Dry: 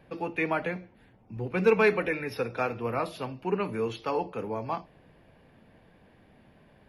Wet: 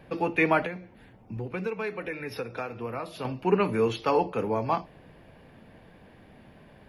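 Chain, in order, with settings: 0.65–3.25 s: compression 4:1, threshold -38 dBFS, peak gain reduction 17.5 dB; trim +5.5 dB

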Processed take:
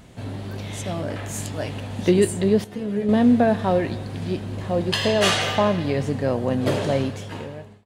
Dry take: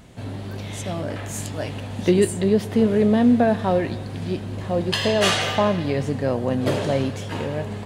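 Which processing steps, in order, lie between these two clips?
fade out at the end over 0.90 s; 2.64–3.09 s: inharmonic resonator 67 Hz, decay 0.29 s, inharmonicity 0.002

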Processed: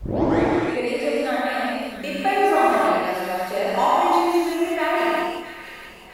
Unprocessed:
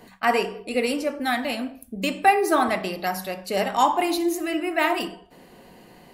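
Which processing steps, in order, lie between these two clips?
tape start-up on the opening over 0.49 s; peaking EQ 170 Hz -9.5 dB 1.4 oct; two-band feedback delay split 1.5 kHz, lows 108 ms, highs 660 ms, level -10.5 dB; gated-style reverb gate 410 ms flat, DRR -7.5 dB; added noise pink -49 dBFS; treble shelf 2.6 kHz -10 dB; trim -3 dB

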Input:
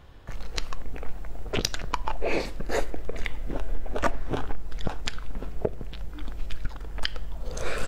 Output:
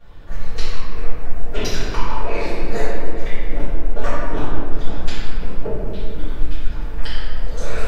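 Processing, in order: compression, threshold -23 dBFS, peak gain reduction 6.5 dB; reverberation RT60 2.2 s, pre-delay 3 ms, DRR -18.5 dB; trim -11 dB

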